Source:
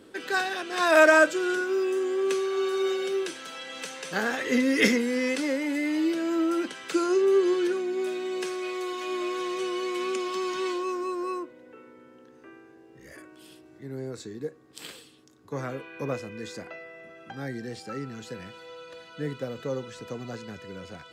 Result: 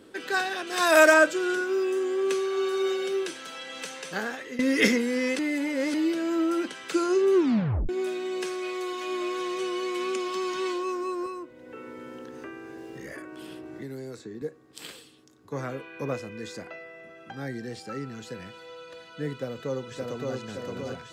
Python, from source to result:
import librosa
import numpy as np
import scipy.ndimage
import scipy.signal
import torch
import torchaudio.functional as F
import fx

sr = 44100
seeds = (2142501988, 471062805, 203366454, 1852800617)

y = fx.high_shelf(x, sr, hz=6600.0, db=11.5, at=(0.67, 1.14))
y = fx.band_squash(y, sr, depth_pct=100, at=(11.26, 14.42))
y = fx.echo_throw(y, sr, start_s=19.34, length_s=1.02, ms=570, feedback_pct=60, wet_db=-2.0)
y = fx.edit(y, sr, fx.fade_out_to(start_s=3.98, length_s=0.61, floor_db=-17.0),
    fx.reverse_span(start_s=5.39, length_s=0.55),
    fx.tape_stop(start_s=7.34, length_s=0.55), tone=tone)